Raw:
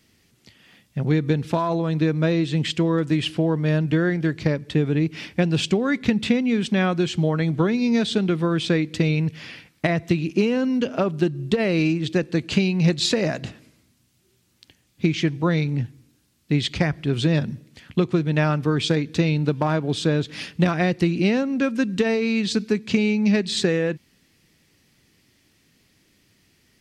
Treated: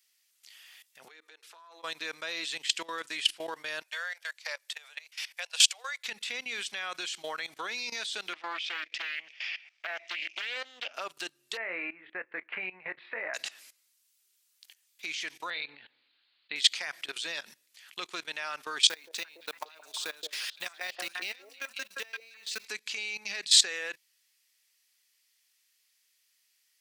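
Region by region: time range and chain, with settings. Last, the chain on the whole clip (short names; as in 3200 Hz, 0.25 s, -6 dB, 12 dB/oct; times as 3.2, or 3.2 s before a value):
1.08–1.83 compressor 10:1, threshold -30 dBFS + rippled Chebyshev high-pass 310 Hz, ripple 6 dB
3.82–6.05 steep high-pass 510 Hz 72 dB/oct + high shelf 5400 Hz +6 dB + upward expander, over -38 dBFS
8.33–10.94 speaker cabinet 370–4700 Hz, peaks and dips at 440 Hz -10 dB, 670 Hz +5 dB, 1000 Hz -7 dB, 1500 Hz -4 dB, 2400 Hz +5 dB, 4100 Hz -9 dB + Doppler distortion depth 0.49 ms
11.57–13.34 elliptic low-pass 2100 Hz, stop band 70 dB + doubler 22 ms -9.5 dB
15.5–16.56 steep low-pass 4400 Hz 96 dB/oct + de-hum 83.06 Hz, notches 21
18.89–22.68 G.711 law mismatch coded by mu + level quantiser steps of 19 dB + delay with a stepping band-pass 0.172 s, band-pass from 470 Hz, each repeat 1.4 oct, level -3 dB
whole clip: HPF 830 Hz 12 dB/oct; tilt +4 dB/oct; level quantiser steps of 18 dB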